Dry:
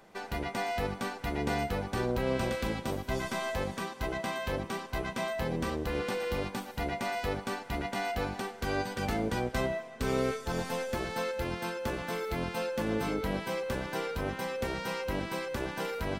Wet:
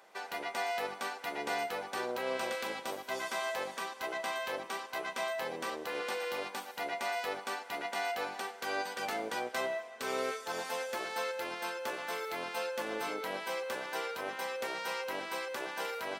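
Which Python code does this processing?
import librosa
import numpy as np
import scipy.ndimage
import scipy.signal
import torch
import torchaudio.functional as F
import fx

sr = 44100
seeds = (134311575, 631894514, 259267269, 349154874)

y = scipy.signal.sosfilt(scipy.signal.butter(2, 550.0, 'highpass', fs=sr, output='sos'), x)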